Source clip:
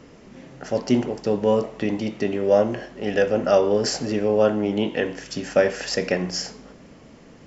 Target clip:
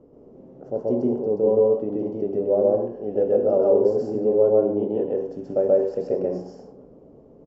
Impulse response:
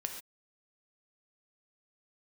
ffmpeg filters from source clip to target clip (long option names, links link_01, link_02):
-filter_complex "[0:a]firequalizer=gain_entry='entry(200,0);entry(410,8);entry(1800,-25)':delay=0.05:min_phase=1,asplit=2[link_01][link_02];[1:a]atrim=start_sample=2205,afade=type=out:start_time=0.17:duration=0.01,atrim=end_sample=7938,adelay=130[link_03];[link_02][link_03]afir=irnorm=-1:irlink=0,volume=2dB[link_04];[link_01][link_04]amix=inputs=2:normalize=0,volume=-8.5dB"